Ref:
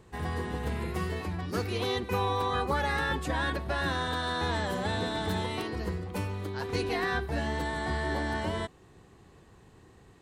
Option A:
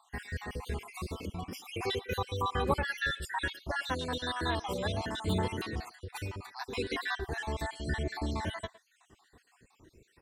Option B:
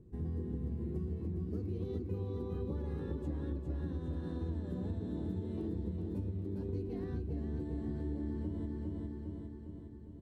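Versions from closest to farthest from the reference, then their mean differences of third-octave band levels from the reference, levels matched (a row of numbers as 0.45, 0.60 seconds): A, B; 7.5, 13.0 decibels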